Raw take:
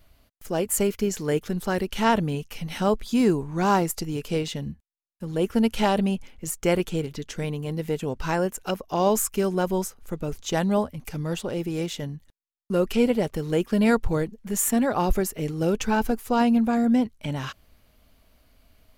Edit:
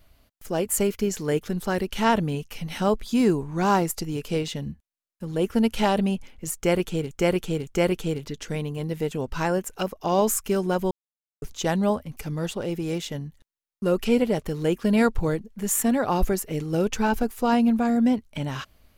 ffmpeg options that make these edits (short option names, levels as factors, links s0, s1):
-filter_complex "[0:a]asplit=5[s0][s1][s2][s3][s4];[s0]atrim=end=7.112[s5];[s1]atrim=start=6.548:end=7.112[s6];[s2]atrim=start=6.548:end=9.79,asetpts=PTS-STARTPTS,afade=t=out:st=3.238:d=0.004:c=hsin[s7];[s3]atrim=start=9.79:end=10.3,asetpts=PTS-STARTPTS,volume=0[s8];[s4]atrim=start=10.3,asetpts=PTS-STARTPTS,afade=t=in:d=0.004:c=hsin[s9];[s5][s6]acrossfade=d=0.004:c1=hsin:c2=hsin[s10];[s7][s8][s9]concat=n=3:v=0:a=1[s11];[s10][s11]acrossfade=d=0.004:c1=hsin:c2=hsin"